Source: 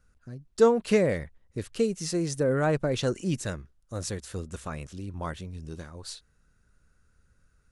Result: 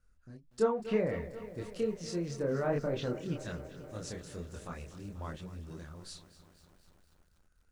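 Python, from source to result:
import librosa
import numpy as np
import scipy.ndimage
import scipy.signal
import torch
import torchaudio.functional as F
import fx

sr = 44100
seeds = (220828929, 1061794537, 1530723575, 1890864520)

y = fx.env_lowpass_down(x, sr, base_hz=2200.0, full_db=-21.5)
y = fx.chorus_voices(y, sr, voices=6, hz=1.5, base_ms=26, depth_ms=3.0, mix_pct=45)
y = fx.echo_crushed(y, sr, ms=242, feedback_pct=80, bits=9, wet_db=-15.0)
y = y * 10.0 ** (-4.5 / 20.0)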